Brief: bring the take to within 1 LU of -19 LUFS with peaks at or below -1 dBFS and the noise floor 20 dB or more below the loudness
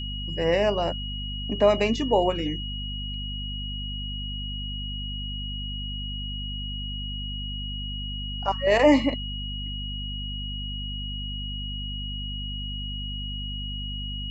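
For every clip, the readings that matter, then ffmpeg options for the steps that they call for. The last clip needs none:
hum 50 Hz; harmonics up to 250 Hz; hum level -31 dBFS; steady tone 2900 Hz; tone level -34 dBFS; loudness -28.0 LUFS; peak -7.5 dBFS; loudness target -19.0 LUFS
-> -af "bandreject=f=50:t=h:w=4,bandreject=f=100:t=h:w=4,bandreject=f=150:t=h:w=4,bandreject=f=200:t=h:w=4,bandreject=f=250:t=h:w=4"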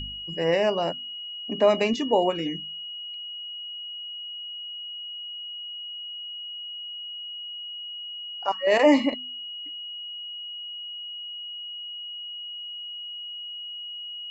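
hum none; steady tone 2900 Hz; tone level -34 dBFS
-> -af "bandreject=f=2.9k:w=30"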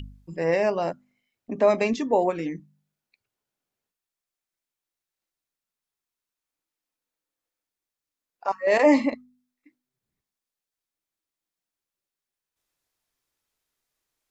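steady tone none; loudness -23.5 LUFS; peak -8.0 dBFS; loudness target -19.0 LUFS
-> -af "volume=4.5dB"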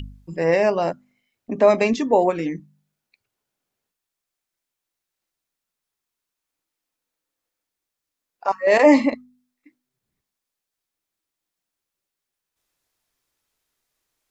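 loudness -19.0 LUFS; peak -3.5 dBFS; noise floor -85 dBFS

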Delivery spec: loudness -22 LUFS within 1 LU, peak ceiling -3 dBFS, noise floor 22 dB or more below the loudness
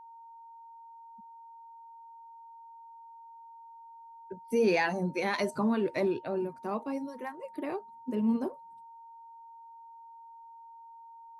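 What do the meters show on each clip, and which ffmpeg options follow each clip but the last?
steady tone 920 Hz; tone level -48 dBFS; loudness -31.5 LUFS; peak -16.0 dBFS; loudness target -22.0 LUFS
-> -af "bandreject=f=920:w=30"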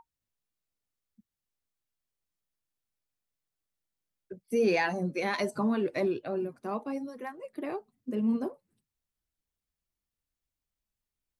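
steady tone none; loudness -31.5 LUFS; peak -16.0 dBFS; loudness target -22.0 LUFS
-> -af "volume=9.5dB"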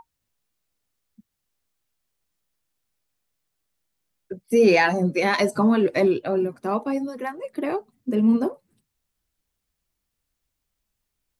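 loudness -22.0 LUFS; peak -6.5 dBFS; noise floor -80 dBFS

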